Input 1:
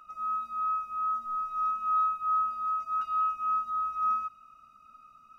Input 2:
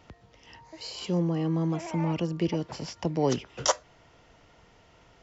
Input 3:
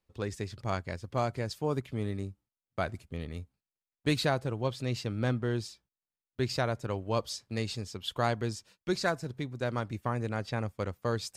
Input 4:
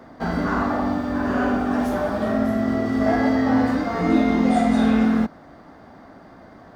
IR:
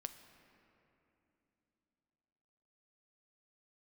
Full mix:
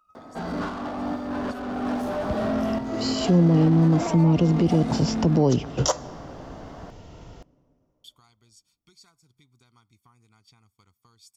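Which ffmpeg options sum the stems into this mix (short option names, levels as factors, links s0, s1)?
-filter_complex "[0:a]acompressor=threshold=0.00891:ratio=6,volume=0.299[s0];[1:a]lowshelf=f=320:g=8.5,acontrast=49,adelay=2200,volume=1.26,asplit=2[s1][s2];[s2]volume=0.335[s3];[2:a]acompressor=threshold=0.0126:ratio=8,tiltshelf=f=1300:g=-9,aecho=1:1:0.9:0.95,volume=0.168,asplit=3[s4][s5][s6];[s4]atrim=end=5.46,asetpts=PTS-STARTPTS,afade=t=out:st=5.456:d=0.004:c=hsin[s7];[s5]atrim=start=5.46:end=8.04,asetpts=PTS-STARTPTS,volume=0[s8];[s6]atrim=start=8.04,asetpts=PTS-STARTPTS,afade=t=in:d=0.004:c=hsin[s9];[s7][s8][s9]concat=n=3:v=0:a=1,asplit=3[s10][s11][s12];[s11]volume=0.106[s13];[3:a]lowshelf=f=330:g=8,asplit=2[s14][s15];[s15]highpass=f=720:p=1,volume=11.2,asoftclip=type=tanh:threshold=0.398[s16];[s14][s16]amix=inputs=2:normalize=0,lowpass=f=5700:p=1,volume=0.501,adelay=150,volume=0.335[s17];[s12]apad=whole_len=304373[s18];[s17][s18]sidechaincompress=threshold=0.00141:ratio=8:attack=16:release=466[s19];[4:a]atrim=start_sample=2205[s20];[s3][s13]amix=inputs=2:normalize=0[s21];[s21][s20]afir=irnorm=-1:irlink=0[s22];[s0][s1][s10][s19][s22]amix=inputs=5:normalize=0,equalizer=f=2000:w=1.1:g=-7.5,alimiter=limit=0.282:level=0:latency=1:release=110"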